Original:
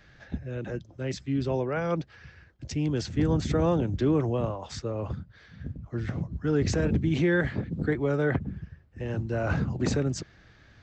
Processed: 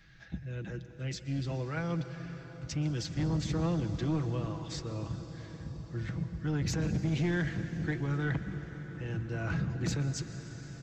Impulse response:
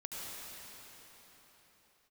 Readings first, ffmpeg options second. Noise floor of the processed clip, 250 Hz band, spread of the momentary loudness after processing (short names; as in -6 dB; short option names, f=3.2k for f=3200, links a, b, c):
-49 dBFS, -6.0 dB, 12 LU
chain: -filter_complex "[0:a]equalizer=f=560:w=0.73:g=-10.5,aecho=1:1:6.1:0.5,asoftclip=type=tanh:threshold=-22.5dB,asplit=2[a][b];[1:a]atrim=start_sample=2205,asetrate=25578,aresample=44100[c];[b][c]afir=irnorm=-1:irlink=0,volume=-12dB[d];[a][d]amix=inputs=2:normalize=0,volume=-3.5dB"